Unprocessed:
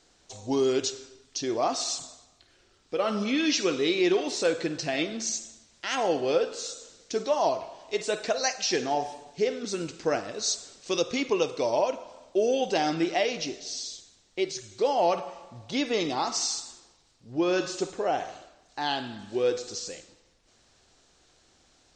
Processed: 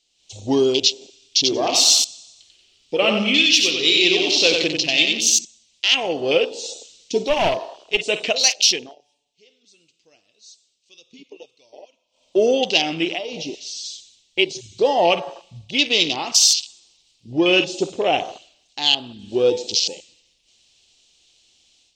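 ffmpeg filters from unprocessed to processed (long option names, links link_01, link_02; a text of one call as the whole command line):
ffmpeg -i in.wav -filter_complex "[0:a]asettb=1/sr,asplit=3[link_01][link_02][link_03];[link_01]atrim=end=0.924[link_04];[link_02]atrim=start=0.92:end=5.45,asetpts=PTS-STARTPTS,afade=type=in:duration=0.004:curve=qsin,afade=type=out:start_time=4.526:duration=0.004:curve=qsin,aecho=1:1:92|184|276|368|460|552:0.631|0.297|0.139|0.0655|0.0308|0.0145,atrim=end_sample=199773[link_05];[link_03]atrim=start=5.446[link_06];[link_04][link_05]acrossfade=duration=0.004:curve1=hsin:curve2=qsin[link_07];[link_07][link_06]acrossfade=duration=0.004:curve1=qsin:curve2=hsin,asettb=1/sr,asplit=3[link_08][link_09][link_10];[link_08]atrim=end=7.234[link_11];[link_09]atrim=start=7.23:end=8.05,asetpts=PTS-STARTPTS,afade=type=in:duration=0.004:curve=qsin,afade=type=out:start_time=0.816:duration=0.004:curve=qsin,aeval=exprs='clip(val(0),-1,0.0473)':channel_layout=same[link_12];[link_10]atrim=start=8.046[link_13];[link_11][link_12]acrossfade=duration=0.004:curve1=hsin:curve2=qsin[link_14];[link_14][link_13]acrossfade=duration=0.004:curve1=qsin:curve2=hsin,asettb=1/sr,asplit=3[link_15][link_16][link_17];[link_15]atrim=end=13.124[link_18];[link_16]atrim=start=13.12:end=13.85,asetpts=PTS-STARTPTS,afade=type=in:duration=0.004:curve=qsin,afade=type=out:start_time=0.726:duration=0.004:curve=qsin,acompressor=threshold=-33dB:ratio=4:attack=3.2:release=140:knee=1:detection=peak[link_19];[link_17]atrim=start=13.846[link_20];[link_18][link_19]acrossfade=duration=0.004:curve1=hsin:curve2=qsin[link_21];[link_21][link_20]acrossfade=duration=0.004:curve1=qsin:curve2=hsin,asplit=3[link_22][link_23][link_24];[link_22]atrim=end=8.96,asetpts=PTS-STARTPTS,afade=type=out:start_time=8.66:duration=0.3:silence=0.0668344[link_25];[link_23]atrim=start=8.96:end=12.11,asetpts=PTS-STARTPTS,volume=-23.5dB[link_26];[link_24]atrim=start=12.11,asetpts=PTS-STARTPTS,afade=type=in:duration=0.3:silence=0.0668344[link_27];[link_25][link_26][link_27]concat=n=3:v=0:a=1,afwtdn=0.0141,highshelf=frequency=2100:width_type=q:width=3:gain=11,dynaudnorm=framelen=140:gausssize=3:maxgain=10dB,volume=-1dB" out.wav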